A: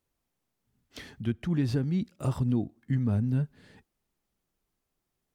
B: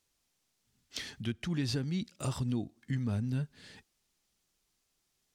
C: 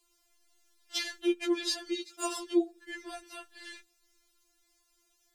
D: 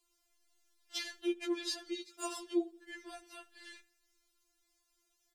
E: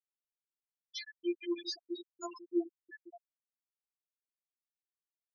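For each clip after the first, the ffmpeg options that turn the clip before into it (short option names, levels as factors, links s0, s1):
-filter_complex "[0:a]equalizer=f=5500:t=o:w=2.8:g=13.5,asplit=2[s0][s1];[s1]acompressor=threshold=0.0158:ratio=6,volume=0.891[s2];[s0][s2]amix=inputs=2:normalize=0,volume=0.398"
-af "afftfilt=real='re*4*eq(mod(b,16),0)':imag='im*4*eq(mod(b,16),0)':win_size=2048:overlap=0.75,volume=2.82"
-filter_complex "[0:a]asplit=2[s0][s1];[s1]adelay=81,lowpass=f=4300:p=1,volume=0.0708,asplit=2[s2][s3];[s3]adelay=81,lowpass=f=4300:p=1,volume=0.53,asplit=2[s4][s5];[s5]adelay=81,lowpass=f=4300:p=1,volume=0.53,asplit=2[s6][s7];[s7]adelay=81,lowpass=f=4300:p=1,volume=0.53[s8];[s0][s2][s4][s6][s8]amix=inputs=5:normalize=0,volume=0.501"
-af "aresample=16000,aresample=44100,afftfilt=real='re*gte(hypot(re,im),0.0398)':imag='im*gte(hypot(re,im),0.0398)':win_size=1024:overlap=0.75"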